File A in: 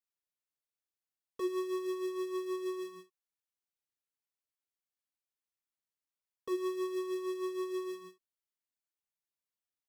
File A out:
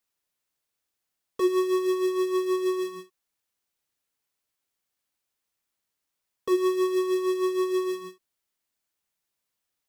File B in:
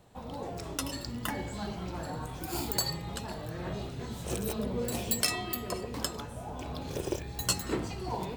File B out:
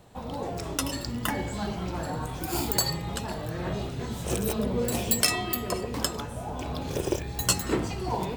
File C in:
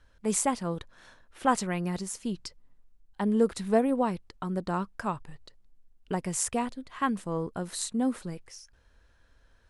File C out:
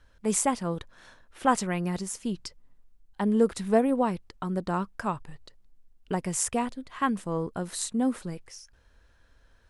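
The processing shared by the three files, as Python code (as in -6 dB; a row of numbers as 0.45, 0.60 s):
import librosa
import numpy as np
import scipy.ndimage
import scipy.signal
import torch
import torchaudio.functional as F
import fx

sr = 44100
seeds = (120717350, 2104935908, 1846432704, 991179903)

y = fx.dynamic_eq(x, sr, hz=4200.0, q=6.6, threshold_db=-59.0, ratio=4.0, max_db=-3)
y = y * 10.0 ** (-30 / 20.0) / np.sqrt(np.mean(np.square(y)))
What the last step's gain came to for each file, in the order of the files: +11.0, +5.5, +1.5 dB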